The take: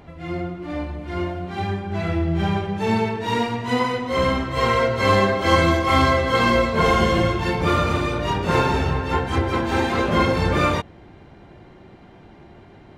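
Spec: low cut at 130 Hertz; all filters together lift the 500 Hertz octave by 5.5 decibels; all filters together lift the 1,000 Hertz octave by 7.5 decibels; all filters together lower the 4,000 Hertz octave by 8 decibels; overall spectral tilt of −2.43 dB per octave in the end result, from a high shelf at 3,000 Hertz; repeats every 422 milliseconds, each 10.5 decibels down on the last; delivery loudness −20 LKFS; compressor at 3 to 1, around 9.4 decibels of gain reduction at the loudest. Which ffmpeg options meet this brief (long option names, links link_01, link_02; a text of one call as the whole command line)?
ffmpeg -i in.wav -af "highpass=130,equalizer=frequency=500:width_type=o:gain=4.5,equalizer=frequency=1000:width_type=o:gain=8.5,highshelf=frequency=3000:gain=-6,equalizer=frequency=4000:width_type=o:gain=-7,acompressor=threshold=-20dB:ratio=3,aecho=1:1:422|844|1266:0.299|0.0896|0.0269,volume=2.5dB" out.wav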